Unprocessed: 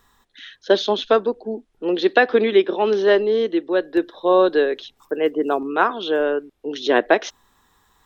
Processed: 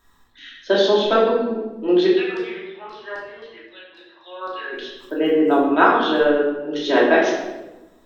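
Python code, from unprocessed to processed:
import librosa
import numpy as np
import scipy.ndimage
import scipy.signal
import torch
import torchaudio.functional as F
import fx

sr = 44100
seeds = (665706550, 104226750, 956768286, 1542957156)

y = fx.rider(x, sr, range_db=10, speed_s=2.0)
y = fx.filter_lfo_bandpass(y, sr, shape='saw_down', hz=3.8, low_hz=910.0, high_hz=5100.0, q=4.5, at=(2.08, 4.72), fade=0.02)
y = fx.room_shoebox(y, sr, seeds[0], volume_m3=520.0, walls='mixed', distance_m=2.8)
y = y * librosa.db_to_amplitude(-6.0)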